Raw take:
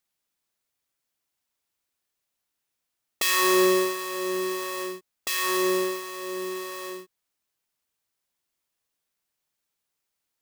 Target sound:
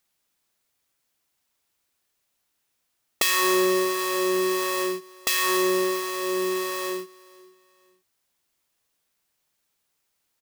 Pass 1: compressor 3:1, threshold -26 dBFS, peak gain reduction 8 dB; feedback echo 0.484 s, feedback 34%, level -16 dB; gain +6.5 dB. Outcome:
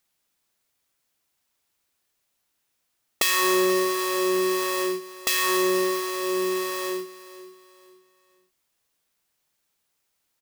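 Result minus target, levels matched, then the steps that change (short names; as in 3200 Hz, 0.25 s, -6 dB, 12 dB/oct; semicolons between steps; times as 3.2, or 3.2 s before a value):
echo-to-direct +7 dB
change: feedback echo 0.484 s, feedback 34%, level -23 dB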